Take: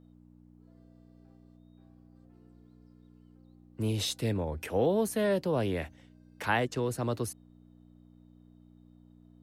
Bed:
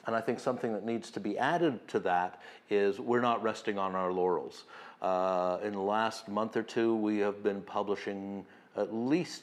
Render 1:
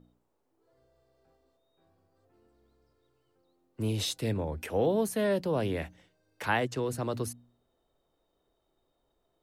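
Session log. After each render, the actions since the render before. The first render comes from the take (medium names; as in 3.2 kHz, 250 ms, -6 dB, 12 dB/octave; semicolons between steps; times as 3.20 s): de-hum 60 Hz, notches 5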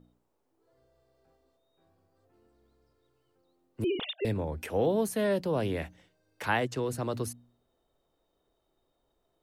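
3.84–4.25 s: formants replaced by sine waves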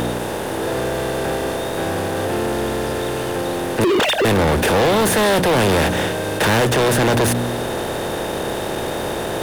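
spectral levelling over time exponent 0.4; waveshaping leveller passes 5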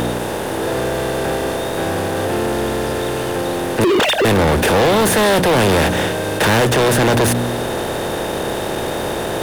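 trim +2 dB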